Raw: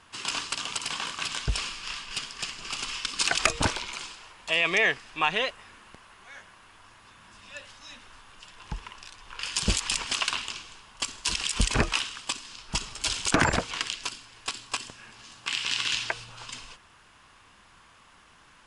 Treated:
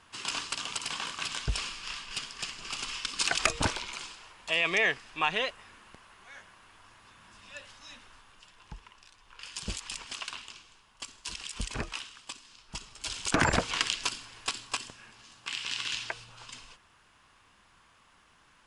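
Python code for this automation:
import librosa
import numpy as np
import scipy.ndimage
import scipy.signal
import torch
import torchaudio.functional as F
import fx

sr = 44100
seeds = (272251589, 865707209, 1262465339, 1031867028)

y = fx.gain(x, sr, db=fx.line((7.95, -3.0), (8.86, -11.0), (12.9, -11.0), (13.71, 2.0), (14.25, 2.0), (15.27, -6.0)))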